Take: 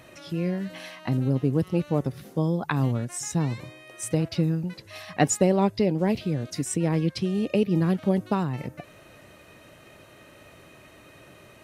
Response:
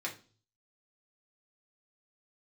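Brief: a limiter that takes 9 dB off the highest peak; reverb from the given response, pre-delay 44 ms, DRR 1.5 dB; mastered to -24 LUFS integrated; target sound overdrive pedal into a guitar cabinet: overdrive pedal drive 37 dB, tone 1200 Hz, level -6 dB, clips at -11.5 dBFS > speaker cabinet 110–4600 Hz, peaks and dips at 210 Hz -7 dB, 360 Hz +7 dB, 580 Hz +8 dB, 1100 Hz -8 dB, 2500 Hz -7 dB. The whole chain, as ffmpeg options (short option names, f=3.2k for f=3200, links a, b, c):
-filter_complex "[0:a]alimiter=limit=-17dB:level=0:latency=1,asplit=2[a][b];[1:a]atrim=start_sample=2205,adelay=44[c];[b][c]afir=irnorm=-1:irlink=0,volume=-4.5dB[d];[a][d]amix=inputs=2:normalize=0,asplit=2[e][f];[f]highpass=f=720:p=1,volume=37dB,asoftclip=type=tanh:threshold=-11.5dB[g];[e][g]amix=inputs=2:normalize=0,lowpass=f=1.2k:p=1,volume=-6dB,highpass=110,equalizer=f=210:t=q:w=4:g=-7,equalizer=f=360:t=q:w=4:g=7,equalizer=f=580:t=q:w=4:g=8,equalizer=f=1.1k:t=q:w=4:g=-8,equalizer=f=2.5k:t=q:w=4:g=-7,lowpass=f=4.6k:w=0.5412,lowpass=f=4.6k:w=1.3066,volume=-5.5dB"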